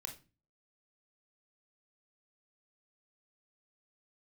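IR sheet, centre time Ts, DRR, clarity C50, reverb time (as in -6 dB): 14 ms, 3.5 dB, 10.0 dB, 0.30 s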